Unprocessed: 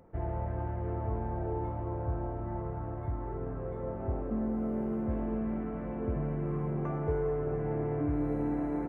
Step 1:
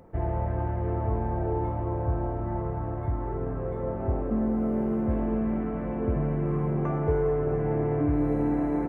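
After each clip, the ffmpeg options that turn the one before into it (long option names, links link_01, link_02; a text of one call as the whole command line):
ffmpeg -i in.wav -af "bandreject=frequency=1400:width=28,volume=6dB" out.wav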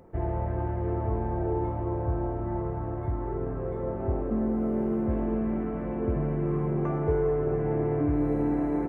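ffmpeg -i in.wav -af "equalizer=frequency=370:width=4.9:gain=5,volume=-1.5dB" out.wav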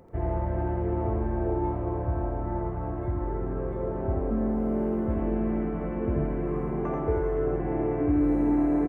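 ffmpeg -i in.wav -af "aecho=1:1:85:0.631" out.wav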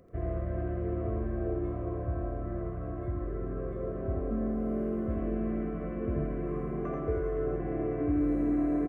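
ffmpeg -i in.wav -af "asuperstop=centerf=870:order=8:qfactor=4.1,volume=-4.5dB" out.wav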